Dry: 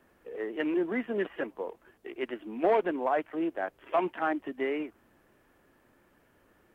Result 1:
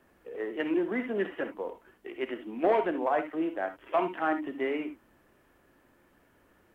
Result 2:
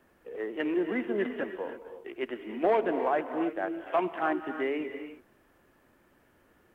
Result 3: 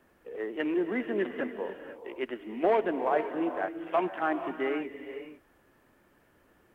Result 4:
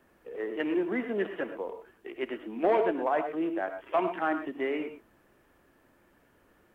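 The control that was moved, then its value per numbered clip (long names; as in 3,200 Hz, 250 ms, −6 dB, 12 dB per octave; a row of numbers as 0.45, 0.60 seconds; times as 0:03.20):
reverb whose tail is shaped and stops, gate: 90, 350, 530, 140 milliseconds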